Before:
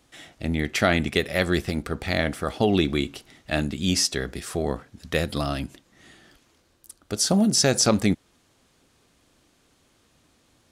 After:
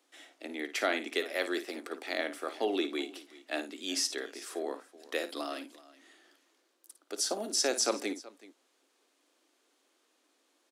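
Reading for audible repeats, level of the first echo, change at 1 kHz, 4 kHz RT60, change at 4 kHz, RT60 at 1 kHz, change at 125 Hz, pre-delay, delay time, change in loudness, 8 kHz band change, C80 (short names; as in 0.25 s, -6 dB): 2, -12.0 dB, -8.5 dB, none, -8.0 dB, none, under -35 dB, none, 55 ms, -9.5 dB, -8.0 dB, none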